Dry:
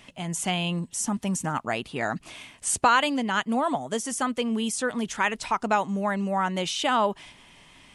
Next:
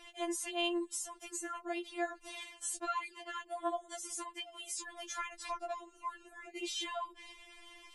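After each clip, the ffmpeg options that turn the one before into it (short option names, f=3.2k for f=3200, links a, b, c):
-filter_complex "[0:a]acrossover=split=240[a][b];[b]acompressor=threshold=-33dB:ratio=6[c];[a][c]amix=inputs=2:normalize=0,afftfilt=real='re*4*eq(mod(b,16),0)':imag='im*4*eq(mod(b,16),0)':win_size=2048:overlap=0.75,volume=-1.5dB"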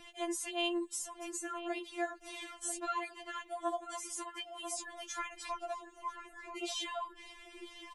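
-filter_complex "[0:a]acrossover=split=330|4500[a][b][c];[a]acompressor=mode=upward:threshold=-59dB:ratio=2.5[d];[d][b][c]amix=inputs=3:normalize=0,asplit=2[e][f];[f]adelay=991.3,volume=-8dB,highshelf=f=4k:g=-22.3[g];[e][g]amix=inputs=2:normalize=0"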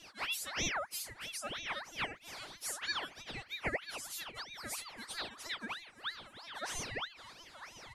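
-af "flanger=delay=0.7:depth=7.7:regen=84:speed=0.56:shape=sinusoidal,aeval=exprs='val(0)*sin(2*PI*2000*n/s+2000*0.55/3.1*sin(2*PI*3.1*n/s))':c=same,volume=6dB"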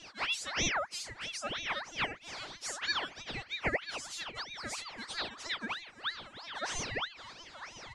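-af "lowpass=f=7.5k:w=0.5412,lowpass=f=7.5k:w=1.3066,volume=4dB"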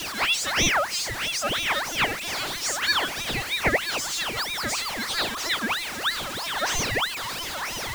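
-af "aeval=exprs='val(0)+0.5*0.0141*sgn(val(0))':c=same,volume=8.5dB"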